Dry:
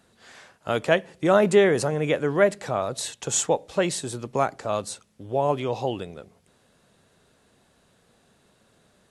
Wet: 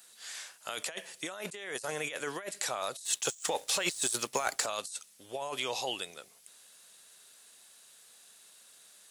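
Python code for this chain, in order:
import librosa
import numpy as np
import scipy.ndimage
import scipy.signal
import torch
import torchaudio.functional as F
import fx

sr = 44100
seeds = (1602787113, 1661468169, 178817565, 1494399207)

y = np.diff(x, prepend=0.0)
y = fx.over_compress(y, sr, threshold_db=-46.0, ratio=-1.0)
y = fx.leveller(y, sr, passes=2, at=(3.05, 4.66))
y = y * librosa.db_to_amplitude(6.0)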